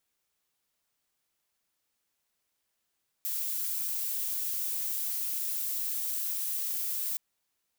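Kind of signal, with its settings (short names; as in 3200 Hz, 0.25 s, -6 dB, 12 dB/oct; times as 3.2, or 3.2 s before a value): noise violet, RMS -32.5 dBFS 3.92 s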